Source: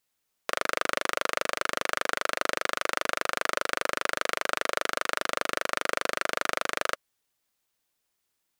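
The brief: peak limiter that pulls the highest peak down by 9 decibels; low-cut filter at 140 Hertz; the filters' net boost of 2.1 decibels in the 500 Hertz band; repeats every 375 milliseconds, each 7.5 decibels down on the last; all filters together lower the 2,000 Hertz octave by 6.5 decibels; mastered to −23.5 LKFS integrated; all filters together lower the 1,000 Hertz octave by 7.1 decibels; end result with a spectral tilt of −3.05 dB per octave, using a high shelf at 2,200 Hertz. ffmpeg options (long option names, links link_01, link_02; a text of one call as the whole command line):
ffmpeg -i in.wav -af "highpass=140,equalizer=frequency=500:width_type=o:gain=5.5,equalizer=frequency=1000:width_type=o:gain=-9,equalizer=frequency=2000:width_type=o:gain=-3,highshelf=frequency=2200:gain=-4.5,alimiter=limit=-18.5dB:level=0:latency=1,aecho=1:1:375|750|1125|1500|1875:0.422|0.177|0.0744|0.0312|0.0131,volume=15dB" out.wav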